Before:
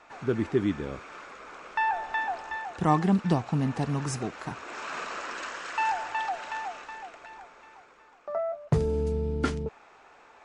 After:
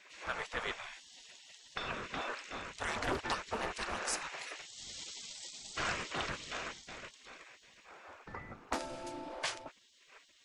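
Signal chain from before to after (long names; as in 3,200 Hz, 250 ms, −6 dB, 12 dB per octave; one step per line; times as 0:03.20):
wind on the microphone 190 Hz −43 dBFS
gate on every frequency bin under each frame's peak −20 dB weak
highs frequency-modulated by the lows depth 0.35 ms
level +4 dB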